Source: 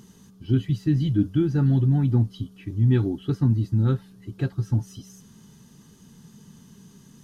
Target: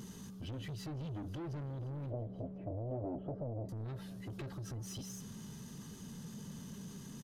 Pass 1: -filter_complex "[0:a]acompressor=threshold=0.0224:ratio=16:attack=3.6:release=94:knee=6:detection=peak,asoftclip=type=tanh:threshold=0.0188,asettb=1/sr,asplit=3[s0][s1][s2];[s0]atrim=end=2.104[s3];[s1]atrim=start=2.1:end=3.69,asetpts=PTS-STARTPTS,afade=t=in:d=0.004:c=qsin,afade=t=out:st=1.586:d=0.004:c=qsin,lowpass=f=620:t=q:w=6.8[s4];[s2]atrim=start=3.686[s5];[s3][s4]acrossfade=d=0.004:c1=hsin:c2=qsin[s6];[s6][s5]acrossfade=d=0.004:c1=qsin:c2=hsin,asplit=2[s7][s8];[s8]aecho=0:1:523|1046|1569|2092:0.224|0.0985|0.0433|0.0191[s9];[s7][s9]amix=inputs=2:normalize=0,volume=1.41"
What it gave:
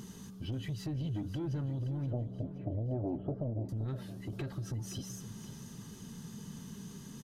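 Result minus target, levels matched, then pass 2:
saturation: distortion -8 dB; echo-to-direct +7 dB
-filter_complex "[0:a]acompressor=threshold=0.0224:ratio=16:attack=3.6:release=94:knee=6:detection=peak,asoftclip=type=tanh:threshold=0.00708,asettb=1/sr,asplit=3[s0][s1][s2];[s0]atrim=end=2.104[s3];[s1]atrim=start=2.1:end=3.69,asetpts=PTS-STARTPTS,afade=t=in:d=0.004:c=qsin,afade=t=out:st=1.586:d=0.004:c=qsin,lowpass=f=620:t=q:w=6.8[s4];[s2]atrim=start=3.686[s5];[s3][s4]acrossfade=d=0.004:c1=hsin:c2=qsin[s6];[s6][s5]acrossfade=d=0.004:c1=qsin:c2=hsin,asplit=2[s7][s8];[s8]aecho=0:1:523|1046|1569:0.1|0.044|0.0194[s9];[s7][s9]amix=inputs=2:normalize=0,volume=1.41"

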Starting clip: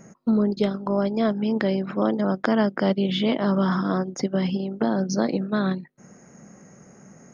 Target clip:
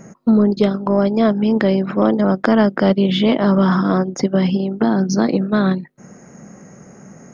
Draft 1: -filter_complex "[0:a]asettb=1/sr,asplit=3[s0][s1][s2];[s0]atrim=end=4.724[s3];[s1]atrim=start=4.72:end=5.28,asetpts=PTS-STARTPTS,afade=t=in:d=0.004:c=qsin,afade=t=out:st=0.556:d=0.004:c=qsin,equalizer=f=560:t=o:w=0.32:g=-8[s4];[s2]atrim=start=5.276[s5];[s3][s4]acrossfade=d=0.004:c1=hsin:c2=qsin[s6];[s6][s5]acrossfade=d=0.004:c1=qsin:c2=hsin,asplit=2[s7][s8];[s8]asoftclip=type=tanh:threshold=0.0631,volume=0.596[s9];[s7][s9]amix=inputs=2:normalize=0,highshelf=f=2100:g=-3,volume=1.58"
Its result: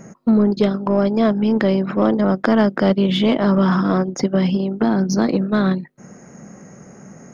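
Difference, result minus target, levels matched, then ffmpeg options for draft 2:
saturation: distortion +10 dB
-filter_complex "[0:a]asettb=1/sr,asplit=3[s0][s1][s2];[s0]atrim=end=4.724[s3];[s1]atrim=start=4.72:end=5.28,asetpts=PTS-STARTPTS,afade=t=in:d=0.004:c=qsin,afade=t=out:st=0.556:d=0.004:c=qsin,equalizer=f=560:t=o:w=0.32:g=-8[s4];[s2]atrim=start=5.276[s5];[s3][s4]acrossfade=d=0.004:c1=hsin:c2=qsin[s6];[s6][s5]acrossfade=d=0.004:c1=qsin:c2=hsin,asplit=2[s7][s8];[s8]asoftclip=type=tanh:threshold=0.188,volume=0.596[s9];[s7][s9]amix=inputs=2:normalize=0,highshelf=f=2100:g=-3,volume=1.58"

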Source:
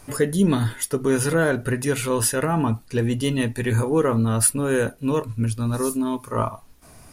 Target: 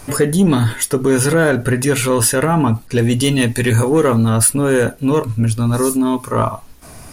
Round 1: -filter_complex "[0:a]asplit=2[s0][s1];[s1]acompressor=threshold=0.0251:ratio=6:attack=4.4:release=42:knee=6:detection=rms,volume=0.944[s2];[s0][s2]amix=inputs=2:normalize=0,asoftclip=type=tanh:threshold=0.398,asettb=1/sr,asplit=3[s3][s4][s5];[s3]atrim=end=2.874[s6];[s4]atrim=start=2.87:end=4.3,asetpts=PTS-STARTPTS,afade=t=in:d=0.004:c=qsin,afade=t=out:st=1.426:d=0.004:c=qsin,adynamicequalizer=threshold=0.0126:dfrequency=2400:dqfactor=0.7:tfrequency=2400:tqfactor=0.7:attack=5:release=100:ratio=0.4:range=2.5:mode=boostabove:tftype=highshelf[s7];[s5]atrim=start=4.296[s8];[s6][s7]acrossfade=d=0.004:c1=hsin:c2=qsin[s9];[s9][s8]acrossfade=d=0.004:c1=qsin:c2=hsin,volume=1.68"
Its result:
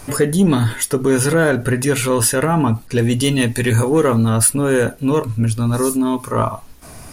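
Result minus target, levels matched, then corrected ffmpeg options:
compression: peak gain reduction +6.5 dB
-filter_complex "[0:a]asplit=2[s0][s1];[s1]acompressor=threshold=0.0596:ratio=6:attack=4.4:release=42:knee=6:detection=rms,volume=0.944[s2];[s0][s2]amix=inputs=2:normalize=0,asoftclip=type=tanh:threshold=0.398,asettb=1/sr,asplit=3[s3][s4][s5];[s3]atrim=end=2.874[s6];[s4]atrim=start=2.87:end=4.3,asetpts=PTS-STARTPTS,afade=t=in:d=0.004:c=qsin,afade=t=out:st=1.426:d=0.004:c=qsin,adynamicequalizer=threshold=0.0126:dfrequency=2400:dqfactor=0.7:tfrequency=2400:tqfactor=0.7:attack=5:release=100:ratio=0.4:range=2.5:mode=boostabove:tftype=highshelf[s7];[s5]atrim=start=4.296[s8];[s6][s7]acrossfade=d=0.004:c1=hsin:c2=qsin[s9];[s9][s8]acrossfade=d=0.004:c1=qsin:c2=hsin,volume=1.68"

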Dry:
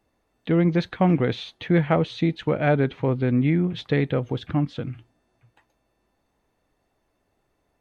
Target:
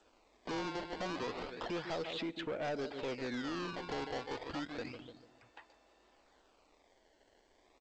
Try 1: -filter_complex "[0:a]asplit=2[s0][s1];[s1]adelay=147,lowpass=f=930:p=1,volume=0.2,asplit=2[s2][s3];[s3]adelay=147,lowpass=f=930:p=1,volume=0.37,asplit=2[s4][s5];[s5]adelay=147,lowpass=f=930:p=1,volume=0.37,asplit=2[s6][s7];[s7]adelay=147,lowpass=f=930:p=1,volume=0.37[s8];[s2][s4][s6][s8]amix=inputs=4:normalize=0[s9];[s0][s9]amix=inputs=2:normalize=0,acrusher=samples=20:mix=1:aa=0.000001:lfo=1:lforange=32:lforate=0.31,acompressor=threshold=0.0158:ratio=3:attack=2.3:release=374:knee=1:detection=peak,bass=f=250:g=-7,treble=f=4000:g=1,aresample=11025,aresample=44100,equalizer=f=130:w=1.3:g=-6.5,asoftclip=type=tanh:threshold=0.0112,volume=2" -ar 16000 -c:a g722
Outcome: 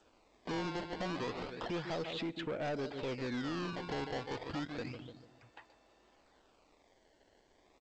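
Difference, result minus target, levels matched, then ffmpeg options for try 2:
125 Hz band +5.0 dB
-filter_complex "[0:a]asplit=2[s0][s1];[s1]adelay=147,lowpass=f=930:p=1,volume=0.2,asplit=2[s2][s3];[s3]adelay=147,lowpass=f=930:p=1,volume=0.37,asplit=2[s4][s5];[s5]adelay=147,lowpass=f=930:p=1,volume=0.37,asplit=2[s6][s7];[s7]adelay=147,lowpass=f=930:p=1,volume=0.37[s8];[s2][s4][s6][s8]amix=inputs=4:normalize=0[s9];[s0][s9]amix=inputs=2:normalize=0,acrusher=samples=20:mix=1:aa=0.000001:lfo=1:lforange=32:lforate=0.31,acompressor=threshold=0.0158:ratio=3:attack=2.3:release=374:knee=1:detection=peak,bass=f=250:g=-7,treble=f=4000:g=1,aresample=11025,aresample=44100,equalizer=f=130:w=1.3:g=-15,asoftclip=type=tanh:threshold=0.0112,volume=2" -ar 16000 -c:a g722

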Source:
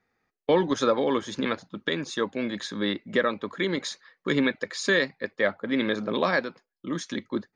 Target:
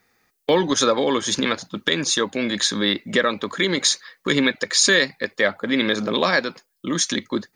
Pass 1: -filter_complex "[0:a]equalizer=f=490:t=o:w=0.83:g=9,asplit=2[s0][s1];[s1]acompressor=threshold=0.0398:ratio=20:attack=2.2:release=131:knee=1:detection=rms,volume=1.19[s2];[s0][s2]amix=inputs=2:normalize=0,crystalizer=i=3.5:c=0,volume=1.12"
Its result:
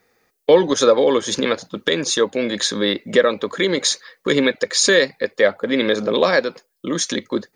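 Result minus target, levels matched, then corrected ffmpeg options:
500 Hz band +4.5 dB
-filter_complex "[0:a]asplit=2[s0][s1];[s1]acompressor=threshold=0.0398:ratio=20:attack=2.2:release=131:knee=1:detection=rms,volume=1.19[s2];[s0][s2]amix=inputs=2:normalize=0,crystalizer=i=3.5:c=0,volume=1.12"

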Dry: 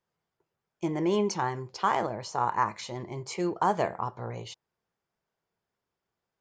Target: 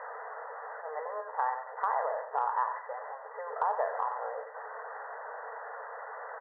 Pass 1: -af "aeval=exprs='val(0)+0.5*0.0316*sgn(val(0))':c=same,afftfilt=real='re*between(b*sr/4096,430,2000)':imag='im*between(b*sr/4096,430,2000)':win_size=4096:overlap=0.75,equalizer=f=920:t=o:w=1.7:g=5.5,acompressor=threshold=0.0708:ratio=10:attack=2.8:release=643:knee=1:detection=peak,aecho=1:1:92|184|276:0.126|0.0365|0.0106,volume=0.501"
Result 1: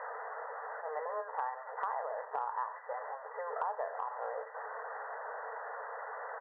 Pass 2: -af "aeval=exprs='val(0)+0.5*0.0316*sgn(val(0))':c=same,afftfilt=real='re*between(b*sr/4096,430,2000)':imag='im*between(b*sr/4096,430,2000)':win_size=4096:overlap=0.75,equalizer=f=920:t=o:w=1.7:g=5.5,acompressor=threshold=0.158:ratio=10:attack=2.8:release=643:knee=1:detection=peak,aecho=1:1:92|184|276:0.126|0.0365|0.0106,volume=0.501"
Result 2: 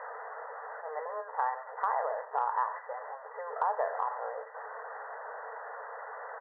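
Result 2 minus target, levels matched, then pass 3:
echo-to-direct -8 dB
-af "aeval=exprs='val(0)+0.5*0.0316*sgn(val(0))':c=same,afftfilt=real='re*between(b*sr/4096,430,2000)':imag='im*between(b*sr/4096,430,2000)':win_size=4096:overlap=0.75,equalizer=f=920:t=o:w=1.7:g=5.5,acompressor=threshold=0.158:ratio=10:attack=2.8:release=643:knee=1:detection=peak,aecho=1:1:92|184|276:0.316|0.0917|0.0266,volume=0.501"

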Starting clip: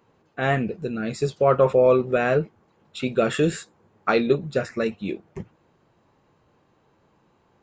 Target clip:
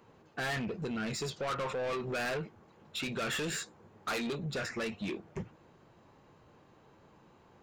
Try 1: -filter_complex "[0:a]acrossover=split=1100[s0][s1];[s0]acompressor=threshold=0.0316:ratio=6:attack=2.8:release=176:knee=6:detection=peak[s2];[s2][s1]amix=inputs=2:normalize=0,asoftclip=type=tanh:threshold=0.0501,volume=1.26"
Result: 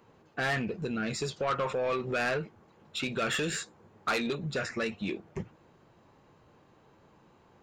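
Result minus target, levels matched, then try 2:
saturation: distortion -5 dB
-filter_complex "[0:a]acrossover=split=1100[s0][s1];[s0]acompressor=threshold=0.0316:ratio=6:attack=2.8:release=176:knee=6:detection=peak[s2];[s2][s1]amix=inputs=2:normalize=0,asoftclip=type=tanh:threshold=0.0211,volume=1.26"

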